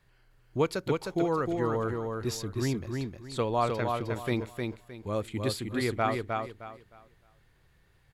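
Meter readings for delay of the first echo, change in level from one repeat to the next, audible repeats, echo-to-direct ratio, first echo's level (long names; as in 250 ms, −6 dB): 309 ms, −11.5 dB, 3, −3.5 dB, −4.0 dB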